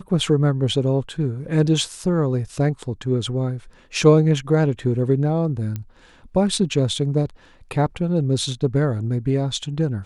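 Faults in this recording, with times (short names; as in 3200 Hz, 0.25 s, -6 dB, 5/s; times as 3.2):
5.76 pop -16 dBFS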